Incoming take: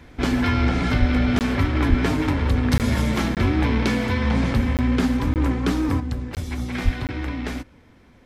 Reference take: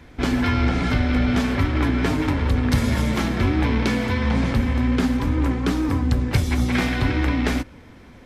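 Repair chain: de-plosive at 0.99/1.89/6.84 s; interpolate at 1.39/2.78/3.35/4.77/5.34/6.35/7.07 s, 18 ms; gain correction +7 dB, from 6.00 s

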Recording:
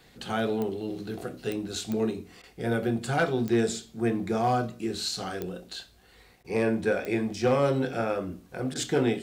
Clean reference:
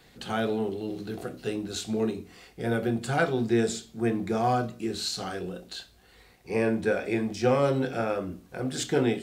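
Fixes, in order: clip repair -16 dBFS; de-click; interpolate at 2.42/6.43/8.74 s, 14 ms

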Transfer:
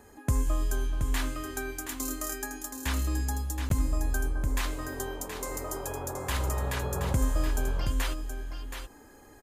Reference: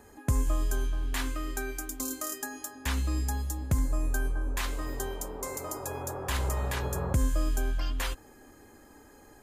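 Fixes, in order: interpolate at 3.69 s, 12 ms; inverse comb 724 ms -7.5 dB

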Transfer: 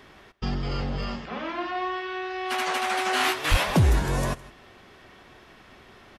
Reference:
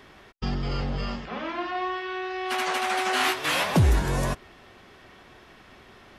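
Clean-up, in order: clip repair -12.5 dBFS; de-plosive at 3.50 s; interpolate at 1.03/3.50 s, 1.2 ms; inverse comb 160 ms -20.5 dB

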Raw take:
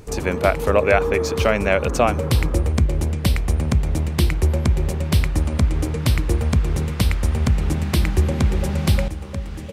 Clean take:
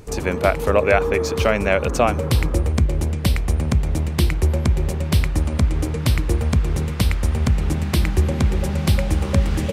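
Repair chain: de-click; trim 0 dB, from 9.08 s +10.5 dB

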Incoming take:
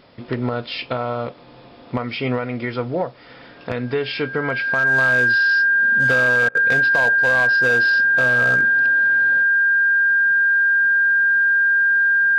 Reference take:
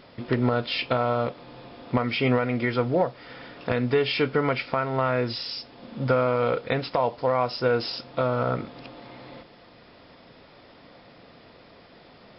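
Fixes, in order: clip repair -11.5 dBFS; band-stop 1.6 kHz, Q 30; interpolate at 6.49 s, 59 ms

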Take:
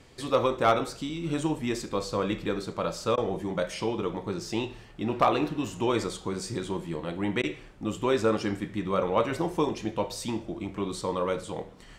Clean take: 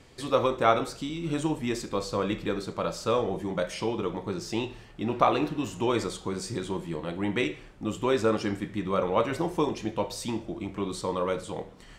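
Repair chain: clip repair -12.5 dBFS; interpolate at 3.16/7.42 s, 14 ms

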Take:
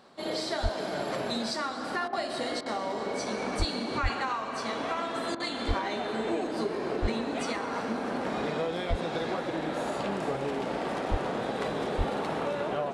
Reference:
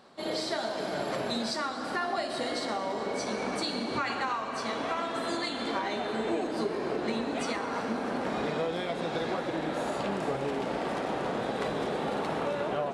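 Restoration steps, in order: de-plosive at 0.62/3.58/4.02/5.67/7.01/8.89/11.10/11.97 s; interpolate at 2.08/2.61/5.35 s, 48 ms

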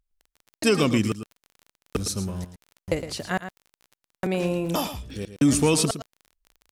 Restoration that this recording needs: de-click; inverse comb 112 ms -11 dB

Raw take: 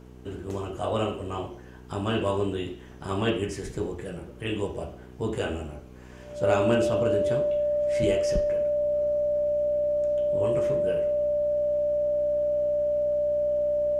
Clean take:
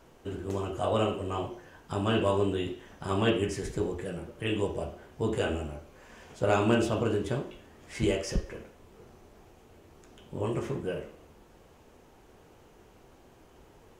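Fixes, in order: de-hum 62.1 Hz, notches 7; band-stop 590 Hz, Q 30

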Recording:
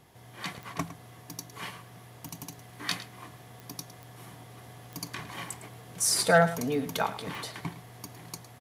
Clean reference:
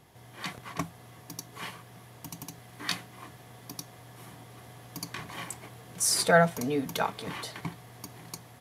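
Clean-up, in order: clip repair -12 dBFS; de-click; inverse comb 108 ms -14.5 dB

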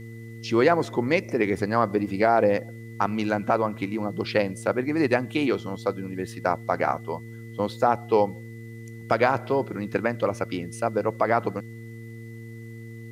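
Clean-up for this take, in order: de-hum 114.1 Hz, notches 4; band-stop 2 kHz, Q 30; expander -32 dBFS, range -21 dB

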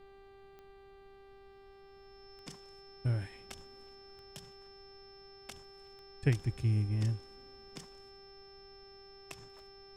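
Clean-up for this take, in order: de-click; de-hum 393.4 Hz, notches 12; band-stop 5.3 kHz, Q 30; noise print and reduce 25 dB

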